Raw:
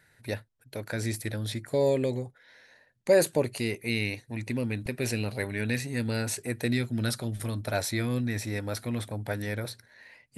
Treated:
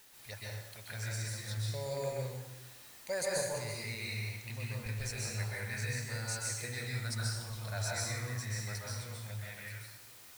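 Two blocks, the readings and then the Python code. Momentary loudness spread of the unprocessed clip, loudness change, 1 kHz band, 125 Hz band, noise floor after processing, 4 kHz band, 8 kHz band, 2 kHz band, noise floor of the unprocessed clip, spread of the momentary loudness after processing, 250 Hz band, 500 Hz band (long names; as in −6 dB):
11 LU, −8.0 dB, −6.0 dB, −5.5 dB, −55 dBFS, −4.0 dB, −1.5 dB, −5.5 dB, −65 dBFS, 10 LU, −18.0 dB, −12.0 dB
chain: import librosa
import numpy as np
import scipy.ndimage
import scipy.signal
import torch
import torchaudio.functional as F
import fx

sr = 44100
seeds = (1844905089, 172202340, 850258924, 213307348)

y = fx.fade_out_tail(x, sr, length_s=1.73)
y = fx.high_shelf(y, sr, hz=7900.0, db=-9.5)
y = fx.env_phaser(y, sr, low_hz=180.0, high_hz=3100.0, full_db=-29.0)
y = fx.tone_stack(y, sr, knobs='10-0-10')
y = fx.quant_dither(y, sr, seeds[0], bits=10, dither='triangular')
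y = fx.rev_plate(y, sr, seeds[1], rt60_s=1.0, hf_ratio=0.8, predelay_ms=115, drr_db=-4.5)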